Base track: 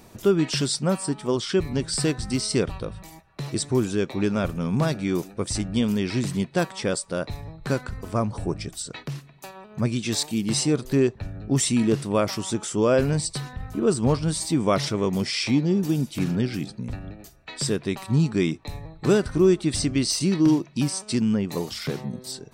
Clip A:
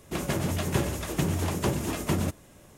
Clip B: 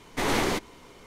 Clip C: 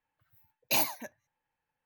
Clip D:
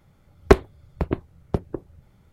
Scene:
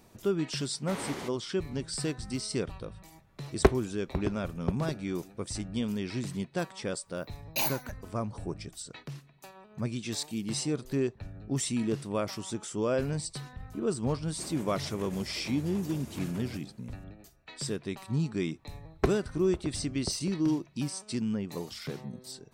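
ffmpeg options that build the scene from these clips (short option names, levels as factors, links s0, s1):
-filter_complex "[4:a]asplit=2[s0][s1];[0:a]volume=0.355[s2];[2:a]highpass=65[s3];[1:a]alimiter=limit=0.0668:level=0:latency=1:release=21[s4];[s3]atrim=end=1.06,asetpts=PTS-STARTPTS,volume=0.224,afade=t=in:d=0.004:c=hsin,afade=t=out:st=1.056:d=0.004:c=hsin,adelay=700[s5];[s0]atrim=end=2.32,asetpts=PTS-STARTPTS,volume=0.422,afade=t=in:d=0.004:c=hsin,afade=t=out:st=2.316:d=0.004:c=hsin,adelay=3140[s6];[3:a]atrim=end=1.85,asetpts=PTS-STARTPTS,volume=0.75,afade=t=in:d=0.004:c=hsin,afade=t=out:st=1.846:d=0.004:c=hsin,adelay=6850[s7];[s4]atrim=end=2.77,asetpts=PTS-STARTPTS,volume=0.237,afade=t=in:d=0.004:c=hsin,afade=t=out:st=2.766:d=0.004:c=hsin,adelay=14270[s8];[s1]atrim=end=2.32,asetpts=PTS-STARTPTS,volume=0.211,afade=t=in:d=0.004:c=hsin,afade=t=out:st=2.316:d=0.004:c=hsin,adelay=18530[s9];[s2][s5][s6][s7][s8][s9]amix=inputs=6:normalize=0"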